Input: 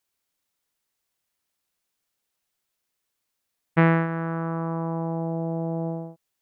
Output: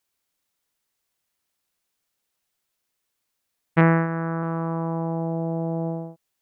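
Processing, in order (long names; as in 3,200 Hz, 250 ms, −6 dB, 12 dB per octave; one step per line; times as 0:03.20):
0:03.81–0:04.43: low-pass filter 2,200 Hz 24 dB per octave
level +1.5 dB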